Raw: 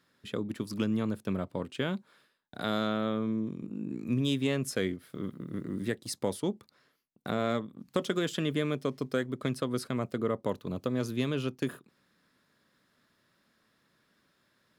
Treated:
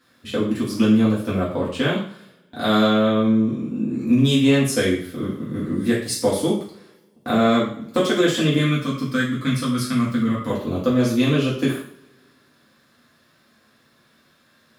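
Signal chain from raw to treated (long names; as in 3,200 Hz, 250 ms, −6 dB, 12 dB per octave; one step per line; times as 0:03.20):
0:08.58–0:10.50: flat-topped bell 560 Hz −12 dB
coupled-rooms reverb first 0.5 s, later 1.8 s, from −27 dB, DRR −7.5 dB
level +4 dB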